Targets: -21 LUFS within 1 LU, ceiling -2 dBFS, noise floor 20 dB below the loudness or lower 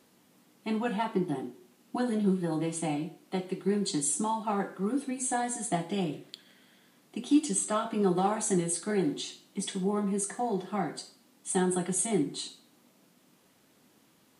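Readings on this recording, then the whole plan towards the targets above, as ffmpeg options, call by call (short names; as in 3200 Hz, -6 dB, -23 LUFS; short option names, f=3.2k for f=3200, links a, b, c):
loudness -30.5 LUFS; peak -13.5 dBFS; loudness target -21.0 LUFS
-> -af "volume=9.5dB"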